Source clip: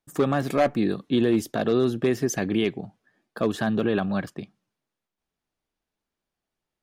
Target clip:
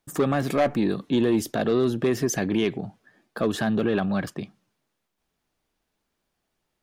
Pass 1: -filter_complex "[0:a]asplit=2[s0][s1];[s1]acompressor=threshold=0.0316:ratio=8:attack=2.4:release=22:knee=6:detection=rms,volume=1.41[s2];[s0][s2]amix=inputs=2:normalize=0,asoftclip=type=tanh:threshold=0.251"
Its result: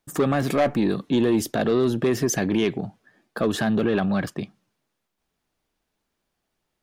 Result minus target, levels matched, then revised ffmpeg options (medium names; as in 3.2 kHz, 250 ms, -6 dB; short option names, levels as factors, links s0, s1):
compression: peak gain reduction -9.5 dB
-filter_complex "[0:a]asplit=2[s0][s1];[s1]acompressor=threshold=0.00891:ratio=8:attack=2.4:release=22:knee=6:detection=rms,volume=1.41[s2];[s0][s2]amix=inputs=2:normalize=0,asoftclip=type=tanh:threshold=0.251"